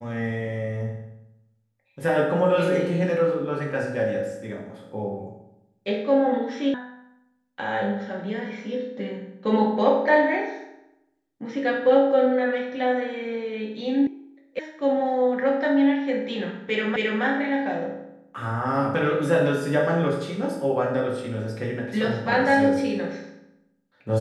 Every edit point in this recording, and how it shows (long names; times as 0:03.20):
0:06.74: cut off before it has died away
0:14.07: cut off before it has died away
0:14.59: cut off before it has died away
0:16.96: the same again, the last 0.27 s